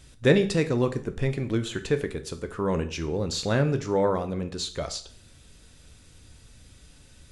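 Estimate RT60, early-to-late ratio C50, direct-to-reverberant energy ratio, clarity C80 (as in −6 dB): 0.50 s, 14.0 dB, 8.0 dB, 18.0 dB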